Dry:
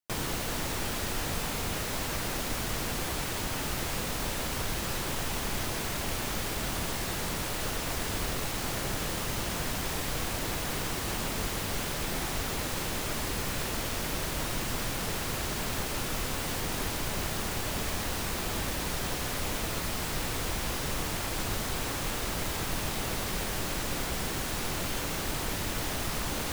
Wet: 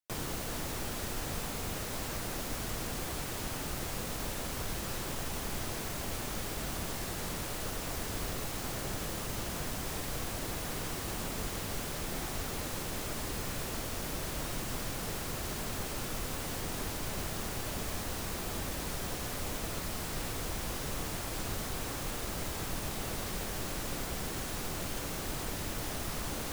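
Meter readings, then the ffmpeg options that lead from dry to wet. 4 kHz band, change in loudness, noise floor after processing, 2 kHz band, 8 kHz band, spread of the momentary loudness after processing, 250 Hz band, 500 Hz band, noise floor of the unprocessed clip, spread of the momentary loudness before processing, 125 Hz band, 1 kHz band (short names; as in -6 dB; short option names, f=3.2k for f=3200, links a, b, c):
-6.0 dB, -5.0 dB, -39 dBFS, -6.5 dB, -4.5 dB, 0 LU, -4.0 dB, -4.0 dB, -34 dBFS, 0 LU, -4.0 dB, -5.5 dB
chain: -filter_complex "[0:a]equalizer=f=920:t=o:w=0.22:g=-2,acrossover=split=150|1300|5000[a][b][c][d];[c]alimiter=level_in=11.5dB:limit=-24dB:level=0:latency=1,volume=-11.5dB[e];[a][b][e][d]amix=inputs=4:normalize=0,volume=-4dB"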